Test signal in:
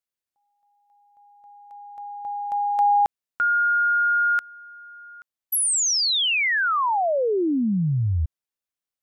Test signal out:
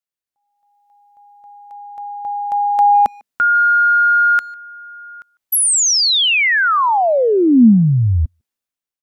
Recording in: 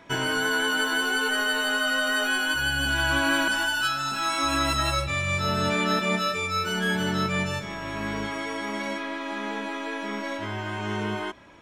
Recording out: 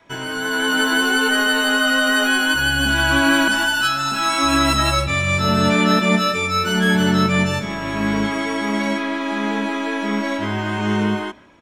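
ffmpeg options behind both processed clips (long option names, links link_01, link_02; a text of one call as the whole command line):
ffmpeg -i in.wav -filter_complex "[0:a]dynaudnorm=framelen=130:gausssize=9:maxgain=9.5dB,adynamicequalizer=threshold=0.0158:dfrequency=230:dqfactor=2.4:tfrequency=230:tqfactor=2.4:attack=5:release=100:ratio=0.375:range=4:mode=boostabove:tftype=bell,asplit=2[link_01][link_02];[link_02]adelay=150,highpass=300,lowpass=3400,asoftclip=type=hard:threshold=-10.5dB,volume=-25dB[link_03];[link_01][link_03]amix=inputs=2:normalize=0,volume=-2dB" out.wav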